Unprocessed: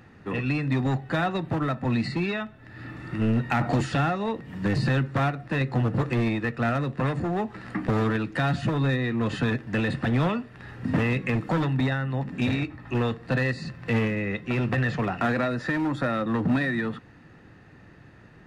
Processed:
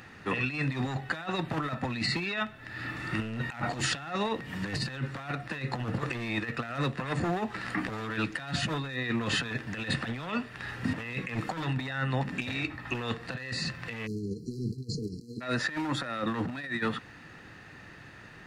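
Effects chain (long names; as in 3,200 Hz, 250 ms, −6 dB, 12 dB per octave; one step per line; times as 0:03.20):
tilt shelving filter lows −6 dB
compressor whose output falls as the input rises −31 dBFS, ratio −0.5
time-frequency box erased 0:14.06–0:15.41, 490–4,000 Hz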